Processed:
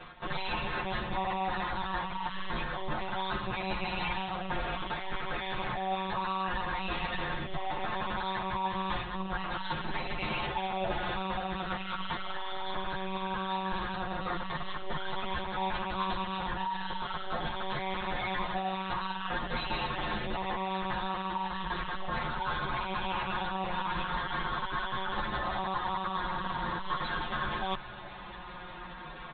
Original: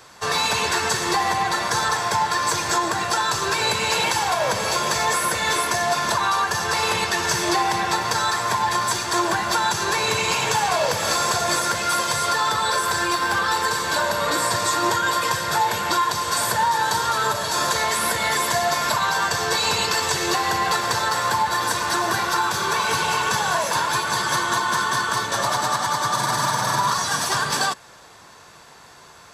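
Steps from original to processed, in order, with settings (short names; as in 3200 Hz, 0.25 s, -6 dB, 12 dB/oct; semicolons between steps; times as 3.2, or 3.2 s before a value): low shelf 230 Hz +5 dB; monotone LPC vocoder at 8 kHz 190 Hz; comb 5.6 ms, depth 75%; reverse; compressor 16:1, threshold -30 dBFS, peak gain reduction 19 dB; reverse; endless flanger 9.5 ms -0.41 Hz; gain +4 dB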